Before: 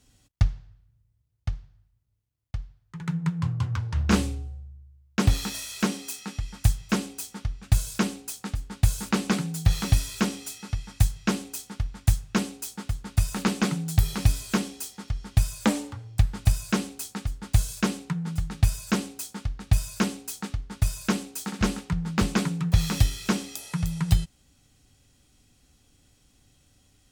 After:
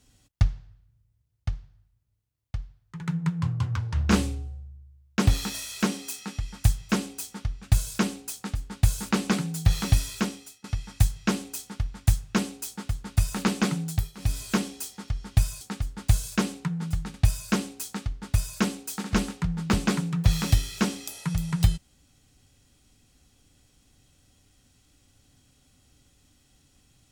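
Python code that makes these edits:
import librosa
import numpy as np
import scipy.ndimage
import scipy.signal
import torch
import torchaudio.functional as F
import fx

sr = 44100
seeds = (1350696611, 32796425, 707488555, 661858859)

y = fx.edit(x, sr, fx.fade_out_to(start_s=10.09, length_s=0.55, floor_db=-23.0),
    fx.fade_down_up(start_s=13.84, length_s=0.58, db=-18.5, fade_s=0.28),
    fx.cut(start_s=15.61, length_s=1.45),
    fx.cut(start_s=18.59, length_s=1.03), tone=tone)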